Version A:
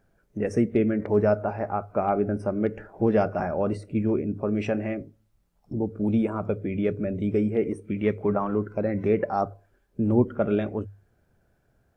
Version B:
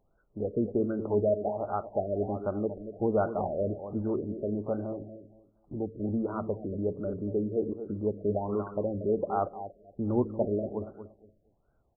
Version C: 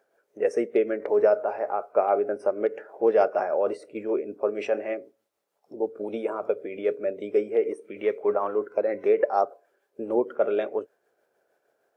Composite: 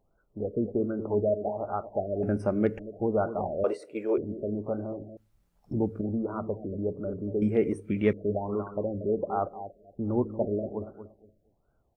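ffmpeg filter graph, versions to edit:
-filter_complex "[0:a]asplit=3[a][b][c];[1:a]asplit=5[d][e][f][g][h];[d]atrim=end=2.232[i];[a]atrim=start=2.228:end=2.792[j];[e]atrim=start=2.788:end=3.642[k];[2:a]atrim=start=3.638:end=4.182[l];[f]atrim=start=4.178:end=5.172[m];[b]atrim=start=5.168:end=6.012[n];[g]atrim=start=6.008:end=7.422[o];[c]atrim=start=7.418:end=8.132[p];[h]atrim=start=8.128[q];[i][j]acrossfade=d=0.004:c1=hsin:c2=hsin[r];[r][k]acrossfade=d=0.004:c1=hsin:c2=hsin[s];[s][l]acrossfade=d=0.004:c1=hsin:c2=hsin[t];[t][m]acrossfade=d=0.004:c1=hsin:c2=hsin[u];[u][n]acrossfade=d=0.004:c1=hsin:c2=hsin[v];[v][o]acrossfade=d=0.004:c1=hsin:c2=hsin[w];[w][p]acrossfade=d=0.004:c1=hsin:c2=hsin[x];[x][q]acrossfade=d=0.004:c1=hsin:c2=hsin"

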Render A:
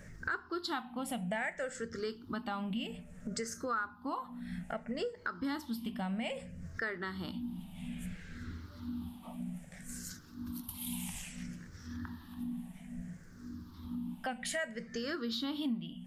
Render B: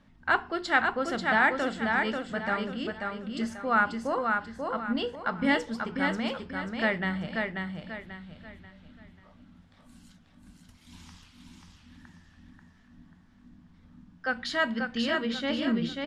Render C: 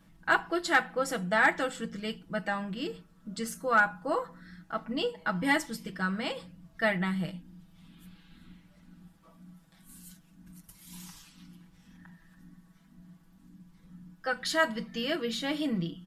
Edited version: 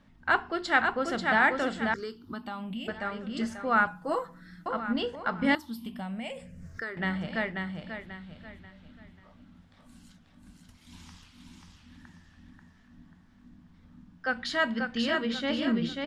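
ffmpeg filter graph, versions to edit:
-filter_complex "[0:a]asplit=2[a][b];[1:a]asplit=4[c][d][e][f];[c]atrim=end=1.942[g];[a]atrim=start=1.938:end=2.882[h];[d]atrim=start=2.878:end=3.872[i];[2:a]atrim=start=3.868:end=4.662[j];[e]atrim=start=4.658:end=5.552[k];[b]atrim=start=5.548:end=6.972[l];[f]atrim=start=6.968[m];[g][h]acrossfade=d=0.004:c1=hsin:c2=hsin[n];[n][i]acrossfade=d=0.004:c1=hsin:c2=hsin[o];[o][j]acrossfade=d=0.004:c1=hsin:c2=hsin[p];[p][k]acrossfade=d=0.004:c1=hsin:c2=hsin[q];[q][l]acrossfade=d=0.004:c1=hsin:c2=hsin[r];[r][m]acrossfade=d=0.004:c1=hsin:c2=hsin"

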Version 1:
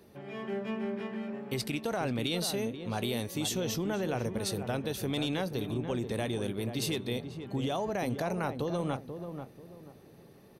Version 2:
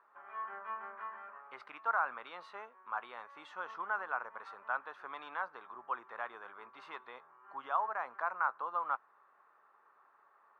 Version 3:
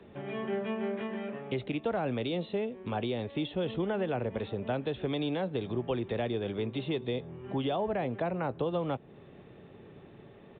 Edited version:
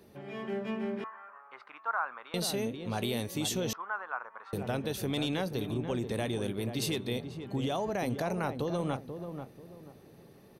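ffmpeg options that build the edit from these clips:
-filter_complex "[1:a]asplit=2[a][b];[0:a]asplit=3[c][d][e];[c]atrim=end=1.042[f];[a]atrim=start=1.038:end=2.342[g];[d]atrim=start=2.338:end=3.732[h];[b]atrim=start=3.728:end=4.532[i];[e]atrim=start=4.528[j];[f][g]acrossfade=d=0.004:c1=hsin:c2=hsin[k];[k][h]acrossfade=d=0.004:c1=hsin:c2=hsin[l];[l][i]acrossfade=d=0.004:c1=hsin:c2=hsin[m];[m][j]acrossfade=d=0.004:c1=hsin:c2=hsin"

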